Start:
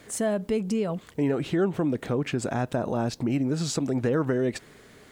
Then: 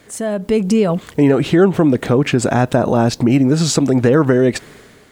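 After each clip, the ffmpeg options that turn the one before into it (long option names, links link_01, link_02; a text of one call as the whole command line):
ffmpeg -i in.wav -af "dynaudnorm=framelen=190:gausssize=5:maxgain=10dB,volume=3dB" out.wav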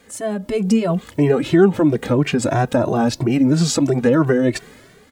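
ffmpeg -i in.wav -filter_complex "[0:a]asplit=2[link_01][link_02];[link_02]adelay=2.1,afreqshift=3[link_03];[link_01][link_03]amix=inputs=2:normalize=1" out.wav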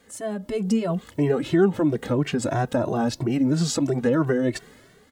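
ffmpeg -i in.wav -af "bandreject=frequency=2400:width=14,volume=-6dB" out.wav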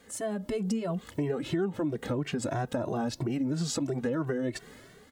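ffmpeg -i in.wav -af "acompressor=threshold=-30dB:ratio=3" out.wav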